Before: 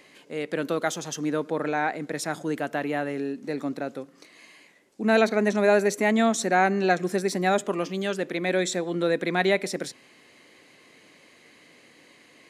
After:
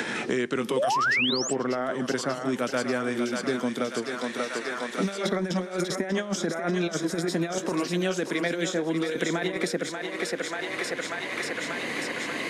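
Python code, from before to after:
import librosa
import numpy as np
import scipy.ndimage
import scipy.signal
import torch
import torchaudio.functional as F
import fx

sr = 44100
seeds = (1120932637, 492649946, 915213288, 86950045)

y = fx.pitch_glide(x, sr, semitones=-3.5, runs='ending unshifted')
y = scipy.signal.sosfilt(scipy.signal.butter(2, 150.0, 'highpass', fs=sr, output='sos'), y)
y = fx.over_compress(y, sr, threshold_db=-27.0, ratio=-0.5)
y = fx.echo_thinned(y, sr, ms=588, feedback_pct=63, hz=530.0, wet_db=-7)
y = fx.spec_paint(y, sr, seeds[0], shape='rise', start_s=0.76, length_s=0.77, low_hz=470.0, high_hz=8400.0, level_db=-20.0)
y = fx.band_squash(y, sr, depth_pct=100)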